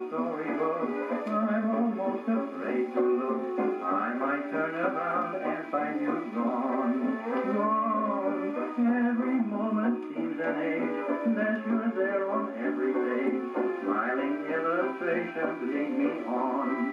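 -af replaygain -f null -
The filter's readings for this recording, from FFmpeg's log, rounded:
track_gain = +10.7 dB
track_peak = 0.127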